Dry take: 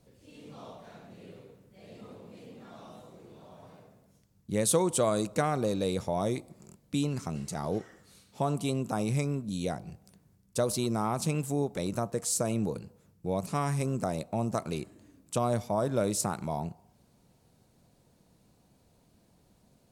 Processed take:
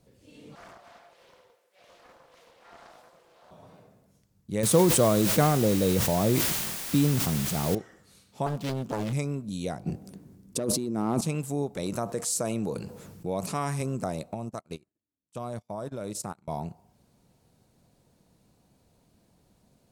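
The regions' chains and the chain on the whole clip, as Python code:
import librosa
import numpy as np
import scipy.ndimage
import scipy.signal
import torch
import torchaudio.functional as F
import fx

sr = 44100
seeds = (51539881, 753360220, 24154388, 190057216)

y = fx.chain(x, sr, fx.highpass(hz=570.0, slope=24),
    fx.comb(ms=5.8, depth=0.4),
    fx.doppler_dist(depth_ms=0.64), at=(0.55, 3.51))
y = fx.chain(y, sr, fx.low_shelf(hz=460.0, db=8.5),
    fx.quant_dither(seeds[0], bits=6, dither='triangular'),
    fx.sustainer(db_per_s=30.0), at=(4.63, 7.75))
y = fx.chain(y, sr, fx.median_filter(points=5),
    fx.high_shelf(hz=5800.0, db=5.0),
    fx.doppler_dist(depth_ms=0.89), at=(8.46, 9.13))
y = fx.chain(y, sr, fx.clip_hard(threshold_db=-23.0),
    fx.peak_eq(hz=290.0, db=14.0, octaves=1.6),
    fx.over_compress(threshold_db=-28.0, ratio=-1.0), at=(9.86, 11.21))
y = fx.chain(y, sr, fx.low_shelf(hz=130.0, db=-8.0),
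    fx.env_flatten(amount_pct=50), at=(11.83, 13.81))
y = fx.chain(y, sr, fx.level_steps(step_db=11),
    fx.upward_expand(threshold_db=-51.0, expansion=2.5), at=(14.34, 16.48))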